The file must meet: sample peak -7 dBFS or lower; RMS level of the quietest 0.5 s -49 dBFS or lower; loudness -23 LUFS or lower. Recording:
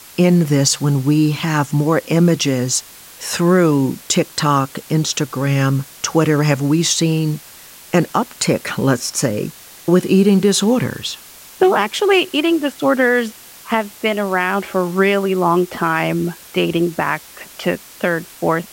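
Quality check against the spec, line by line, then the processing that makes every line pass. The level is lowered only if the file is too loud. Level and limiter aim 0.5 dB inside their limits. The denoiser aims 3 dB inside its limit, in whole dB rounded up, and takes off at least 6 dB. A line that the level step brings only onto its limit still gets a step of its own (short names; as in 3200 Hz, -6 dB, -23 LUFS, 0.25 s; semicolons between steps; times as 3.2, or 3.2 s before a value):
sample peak -3.0 dBFS: fail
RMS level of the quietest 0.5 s -40 dBFS: fail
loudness -17.0 LUFS: fail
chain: denoiser 6 dB, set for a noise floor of -40 dBFS; gain -6.5 dB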